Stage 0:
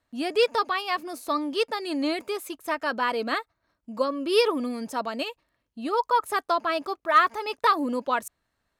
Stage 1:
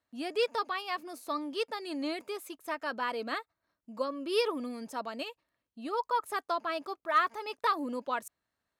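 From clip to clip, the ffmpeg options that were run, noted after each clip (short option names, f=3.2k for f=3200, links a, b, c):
-af "highpass=f=110:p=1,volume=-7.5dB"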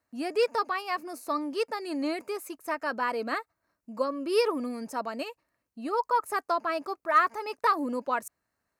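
-af "equalizer=f=3.4k:w=3.3:g=-12.5,volume=4.5dB"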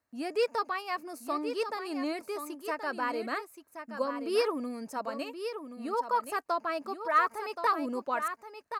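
-af "aecho=1:1:1075:0.355,volume=-3dB"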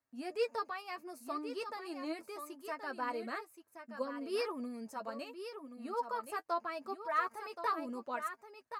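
-af "flanger=delay=7.3:depth=2.1:regen=28:speed=0.71:shape=triangular,volume=-3.5dB"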